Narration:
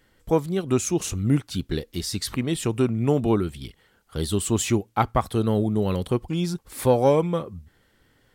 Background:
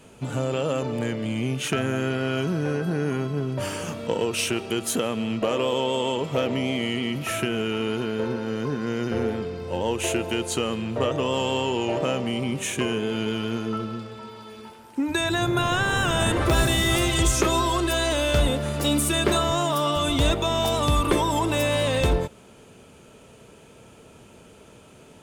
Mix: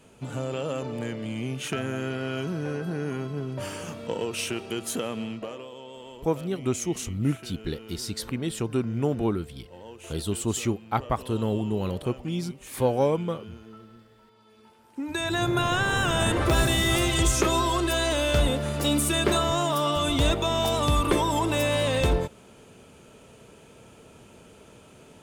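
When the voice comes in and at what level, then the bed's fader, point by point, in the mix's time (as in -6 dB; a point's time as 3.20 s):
5.95 s, -4.5 dB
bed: 5.23 s -5 dB
5.69 s -18.5 dB
14.30 s -18.5 dB
15.41 s -1.5 dB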